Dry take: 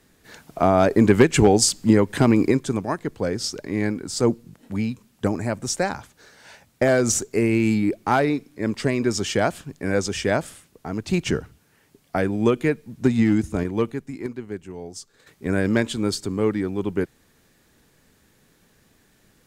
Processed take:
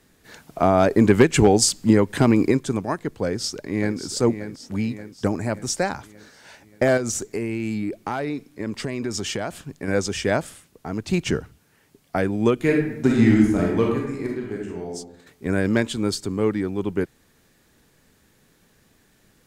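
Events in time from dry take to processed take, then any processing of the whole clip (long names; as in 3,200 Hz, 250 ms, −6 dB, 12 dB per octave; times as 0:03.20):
0:03.24–0:03.97: delay throw 580 ms, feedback 55%, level −10 dB
0:06.97–0:09.88: downward compressor 4 to 1, threshold −23 dBFS
0:12.55–0:14.93: thrown reverb, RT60 0.82 s, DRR −2 dB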